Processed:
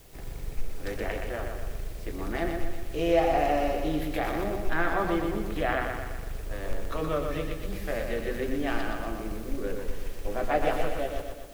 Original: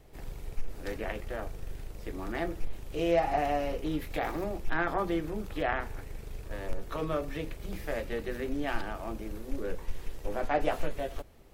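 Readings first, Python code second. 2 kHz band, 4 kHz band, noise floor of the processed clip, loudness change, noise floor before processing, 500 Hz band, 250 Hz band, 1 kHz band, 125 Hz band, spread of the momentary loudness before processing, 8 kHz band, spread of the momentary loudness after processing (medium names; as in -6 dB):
+3.5 dB, +4.0 dB, -38 dBFS, +3.5 dB, -46 dBFS, +4.0 dB, +3.5 dB, +3.0 dB, +3.5 dB, 15 LU, +5.5 dB, 13 LU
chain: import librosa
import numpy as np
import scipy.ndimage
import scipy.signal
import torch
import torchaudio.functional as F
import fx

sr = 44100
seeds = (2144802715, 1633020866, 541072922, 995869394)

p1 = fx.notch(x, sr, hz=900.0, q=15.0)
p2 = fx.quant_dither(p1, sr, seeds[0], bits=10, dither='triangular')
p3 = p2 + fx.echo_feedback(p2, sr, ms=122, feedback_pct=55, wet_db=-5.0, dry=0)
y = p3 * librosa.db_to_amplitude(2.0)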